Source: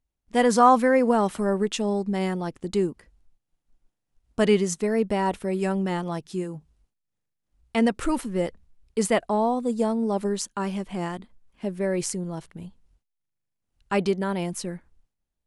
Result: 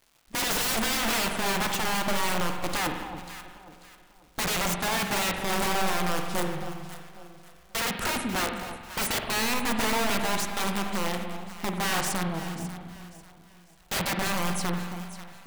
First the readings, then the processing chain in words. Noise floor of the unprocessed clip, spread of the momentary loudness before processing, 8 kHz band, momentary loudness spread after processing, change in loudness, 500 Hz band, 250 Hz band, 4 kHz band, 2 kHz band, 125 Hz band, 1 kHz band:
-81 dBFS, 14 LU, +4.5 dB, 14 LU, -3.0 dB, -9.0 dB, -7.0 dB, +8.5 dB, +5.0 dB, -2.5 dB, -3.5 dB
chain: wrapped overs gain 23 dB; crackle 440/s -48 dBFS; on a send: echo with dull and thin repeats by turns 0.271 s, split 1000 Hz, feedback 56%, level -8 dB; on the sum: spring tank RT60 1.4 s, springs 45 ms, chirp 45 ms, DRR 4.5 dB

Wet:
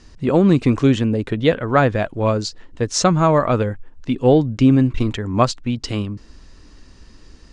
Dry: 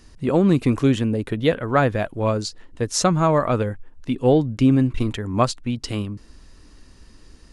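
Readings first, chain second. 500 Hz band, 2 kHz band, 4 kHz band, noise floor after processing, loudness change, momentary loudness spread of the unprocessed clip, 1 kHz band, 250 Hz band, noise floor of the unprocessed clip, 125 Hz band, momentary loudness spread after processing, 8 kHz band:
+3.0 dB, +3.0 dB, +3.0 dB, -46 dBFS, +3.0 dB, 11 LU, +3.0 dB, +3.0 dB, -49 dBFS, +3.0 dB, 11 LU, +1.5 dB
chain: LPF 7600 Hz 24 dB/oct; gain +3 dB

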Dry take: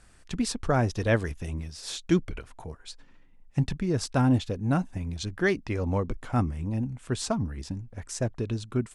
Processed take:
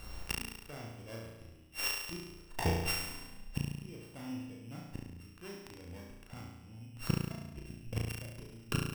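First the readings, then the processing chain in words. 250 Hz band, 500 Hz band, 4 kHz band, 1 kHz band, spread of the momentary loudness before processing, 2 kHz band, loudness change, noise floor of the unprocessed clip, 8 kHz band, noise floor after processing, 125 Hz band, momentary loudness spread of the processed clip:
-14.0 dB, -15.0 dB, -3.0 dB, -11.5 dB, 13 LU, -8.0 dB, -11.0 dB, -55 dBFS, -6.5 dB, -55 dBFS, -11.5 dB, 15 LU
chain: sample sorter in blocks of 16 samples; flipped gate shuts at -28 dBFS, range -33 dB; flutter echo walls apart 6 m, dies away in 1 s; gain +8 dB

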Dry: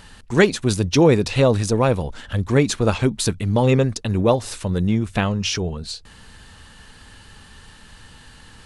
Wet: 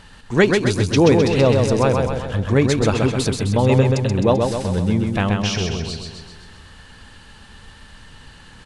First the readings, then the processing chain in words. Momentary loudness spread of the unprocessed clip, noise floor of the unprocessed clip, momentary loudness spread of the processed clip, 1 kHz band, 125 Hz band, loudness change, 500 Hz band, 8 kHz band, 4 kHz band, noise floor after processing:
10 LU, -46 dBFS, 9 LU, +2.0 dB, +2.0 dB, +1.5 dB, +2.0 dB, -1.5 dB, +0.5 dB, -44 dBFS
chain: high shelf 9300 Hz -11 dB; on a send: feedback echo 0.13 s, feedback 56%, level -4 dB

